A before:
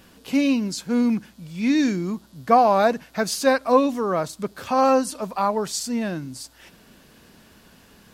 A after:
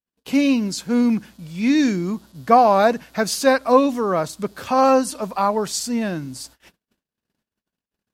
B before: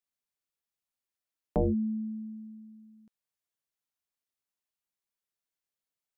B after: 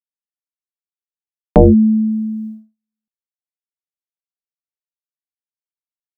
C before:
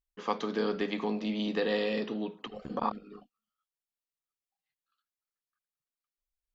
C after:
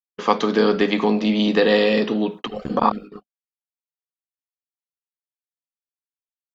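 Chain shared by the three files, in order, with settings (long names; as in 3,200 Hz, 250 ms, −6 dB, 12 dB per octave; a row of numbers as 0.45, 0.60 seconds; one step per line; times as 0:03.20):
noise gate −46 dBFS, range −50 dB
normalise the peak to −1.5 dBFS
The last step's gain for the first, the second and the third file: +2.5, +19.0, +13.0 decibels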